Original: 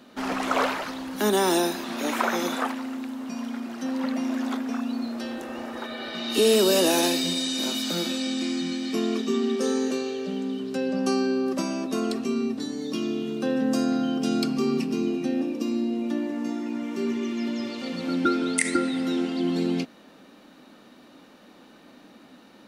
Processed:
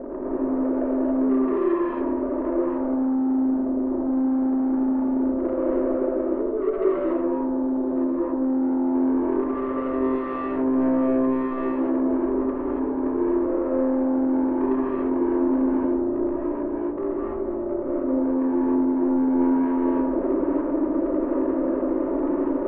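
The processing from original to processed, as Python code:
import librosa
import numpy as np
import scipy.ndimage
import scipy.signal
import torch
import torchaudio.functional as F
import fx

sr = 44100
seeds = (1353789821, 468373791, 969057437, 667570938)

y = np.sign(x) * np.sqrt(np.mean(np.square(x)))
y = fx.ladder_lowpass(y, sr, hz=490.0, resonance_pct=55)
y = fx.peak_eq(y, sr, hz=230.0, db=-14.0, octaves=0.29)
y = y + 0.98 * np.pad(y, (int(3.3 * sr / 1000.0), 0))[:len(y)]
y = fx.echo_feedback(y, sr, ms=84, feedback_pct=44, wet_db=-6.0)
y = 10.0 ** (-30.0 / 20.0) * np.tanh(y / 10.0 ** (-30.0 / 20.0))
y = fx.peak_eq(y, sr, hz=97.0, db=-13.5, octaves=2.4)
y = fx.rev_gated(y, sr, seeds[0], gate_ms=310, shape='rising', drr_db=-5.5)
y = y * 10.0 ** (8.5 / 20.0)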